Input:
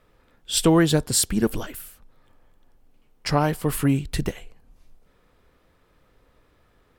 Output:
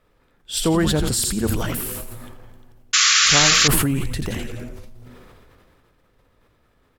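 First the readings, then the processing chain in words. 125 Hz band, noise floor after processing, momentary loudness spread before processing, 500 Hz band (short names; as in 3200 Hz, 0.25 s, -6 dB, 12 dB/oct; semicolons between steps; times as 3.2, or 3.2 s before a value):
+1.0 dB, -62 dBFS, 15 LU, -1.0 dB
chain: frequency-shifting echo 84 ms, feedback 49%, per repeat -130 Hz, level -10 dB; painted sound noise, 2.93–3.68, 1100–7400 Hz -13 dBFS; sustainer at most 22 dB/s; gain -2.5 dB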